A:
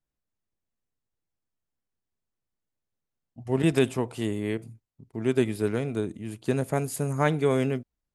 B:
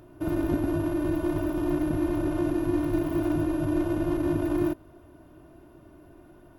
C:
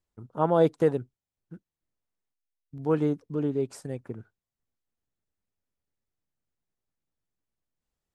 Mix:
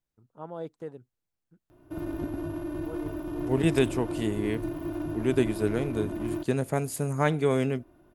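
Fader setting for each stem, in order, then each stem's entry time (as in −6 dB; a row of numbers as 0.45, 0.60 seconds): −1.0, −7.0, −16.5 decibels; 0.00, 1.70, 0.00 seconds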